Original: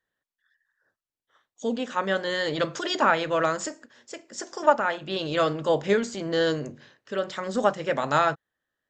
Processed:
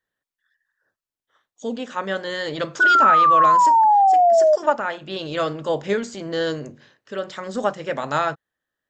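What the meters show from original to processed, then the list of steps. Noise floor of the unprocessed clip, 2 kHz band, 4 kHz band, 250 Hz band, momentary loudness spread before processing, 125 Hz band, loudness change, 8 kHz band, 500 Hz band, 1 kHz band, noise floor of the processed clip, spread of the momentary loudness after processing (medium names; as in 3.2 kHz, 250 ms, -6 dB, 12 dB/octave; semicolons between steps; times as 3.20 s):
under -85 dBFS, +6.0 dB, 0.0 dB, 0.0 dB, 14 LU, 0.0 dB, +7.5 dB, 0.0 dB, +3.5 dB, +11.5 dB, under -85 dBFS, 17 LU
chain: painted sound fall, 2.80–4.56 s, 600–1500 Hz -14 dBFS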